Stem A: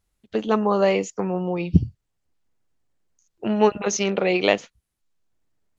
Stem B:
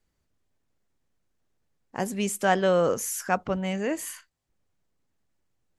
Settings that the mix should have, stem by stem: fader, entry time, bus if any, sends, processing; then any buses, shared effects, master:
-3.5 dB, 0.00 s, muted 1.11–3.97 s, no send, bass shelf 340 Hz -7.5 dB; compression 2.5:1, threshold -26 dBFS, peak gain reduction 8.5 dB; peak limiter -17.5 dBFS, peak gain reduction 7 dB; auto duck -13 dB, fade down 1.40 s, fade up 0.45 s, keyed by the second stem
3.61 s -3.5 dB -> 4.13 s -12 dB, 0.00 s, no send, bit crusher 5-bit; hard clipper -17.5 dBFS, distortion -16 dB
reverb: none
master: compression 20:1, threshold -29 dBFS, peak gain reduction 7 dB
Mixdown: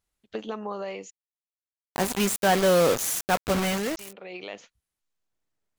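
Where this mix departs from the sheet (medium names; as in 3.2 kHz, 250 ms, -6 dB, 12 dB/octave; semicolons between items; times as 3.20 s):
stem B -3.5 dB -> +2.5 dB; master: missing compression 20:1, threshold -29 dBFS, peak gain reduction 7 dB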